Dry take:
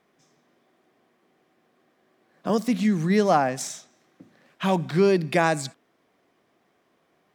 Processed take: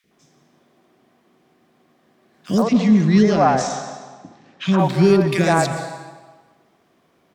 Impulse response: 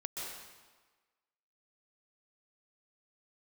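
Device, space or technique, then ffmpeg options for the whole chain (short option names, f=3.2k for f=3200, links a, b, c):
saturated reverb return: -filter_complex "[0:a]asplit=2[a][b];[1:a]atrim=start_sample=2205[c];[b][c]afir=irnorm=-1:irlink=0,asoftclip=type=tanh:threshold=-16.5dB,volume=-5dB[d];[a][d]amix=inputs=2:normalize=0,asplit=3[e][f][g];[e]afade=t=out:st=2.61:d=0.02[h];[f]lowpass=f=6.5k:w=0.5412,lowpass=f=6.5k:w=1.3066,afade=t=in:st=2.61:d=0.02,afade=t=out:st=4.77:d=0.02[i];[g]afade=t=in:st=4.77:d=0.02[j];[h][i][j]amix=inputs=3:normalize=0,equalizer=f=89:w=0.32:g=3.5,acrossover=split=470|1800[k][l][m];[k]adelay=40[n];[l]adelay=110[o];[n][o][m]amix=inputs=3:normalize=0,volume=3.5dB"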